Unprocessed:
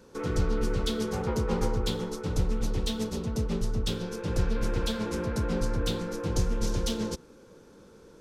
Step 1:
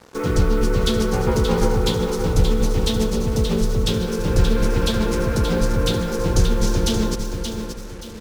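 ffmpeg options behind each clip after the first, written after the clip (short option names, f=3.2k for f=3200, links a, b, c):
-filter_complex "[0:a]asplit=2[a][b];[b]aecho=0:1:577|1154|1731|2308:0.447|0.156|0.0547|0.0192[c];[a][c]amix=inputs=2:normalize=0,acrusher=bits=7:mix=0:aa=0.5,volume=9dB"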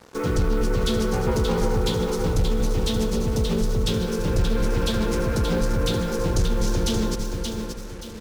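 -filter_complex "[0:a]asplit=2[a][b];[b]alimiter=limit=-11.5dB:level=0:latency=1,volume=0dB[c];[a][c]amix=inputs=2:normalize=0,asoftclip=type=tanh:threshold=-4.5dB,volume=-7.5dB"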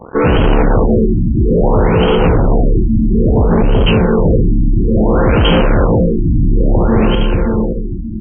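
-af "aeval=exprs='0.237*sin(PI/2*2.24*val(0)/0.237)':c=same,aexciter=amount=6.3:drive=4.2:freq=2.9k,afftfilt=real='re*lt(b*sr/1024,330*pow(3300/330,0.5+0.5*sin(2*PI*0.59*pts/sr)))':imag='im*lt(b*sr/1024,330*pow(3300/330,0.5+0.5*sin(2*PI*0.59*pts/sr)))':win_size=1024:overlap=0.75,volume=6dB"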